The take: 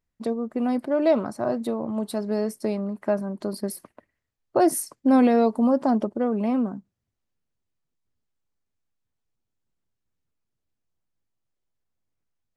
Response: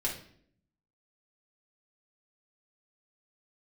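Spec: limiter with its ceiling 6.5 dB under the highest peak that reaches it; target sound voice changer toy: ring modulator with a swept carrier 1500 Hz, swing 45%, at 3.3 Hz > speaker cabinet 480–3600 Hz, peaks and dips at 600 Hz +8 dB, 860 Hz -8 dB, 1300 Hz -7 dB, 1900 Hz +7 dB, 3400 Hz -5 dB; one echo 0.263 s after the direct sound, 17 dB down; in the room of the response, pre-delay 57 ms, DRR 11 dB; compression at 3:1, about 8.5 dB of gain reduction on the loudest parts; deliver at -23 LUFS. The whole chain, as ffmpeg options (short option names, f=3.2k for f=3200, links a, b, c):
-filter_complex "[0:a]acompressor=threshold=-26dB:ratio=3,alimiter=limit=-21dB:level=0:latency=1,aecho=1:1:263:0.141,asplit=2[a][b];[1:a]atrim=start_sample=2205,adelay=57[c];[b][c]afir=irnorm=-1:irlink=0,volume=-15.5dB[d];[a][d]amix=inputs=2:normalize=0,aeval=exprs='val(0)*sin(2*PI*1500*n/s+1500*0.45/3.3*sin(2*PI*3.3*n/s))':c=same,highpass=480,equalizer=f=600:t=q:w=4:g=8,equalizer=f=860:t=q:w=4:g=-8,equalizer=f=1.3k:t=q:w=4:g=-7,equalizer=f=1.9k:t=q:w=4:g=7,equalizer=f=3.4k:t=q:w=4:g=-5,lowpass=f=3.6k:w=0.5412,lowpass=f=3.6k:w=1.3066,volume=7dB"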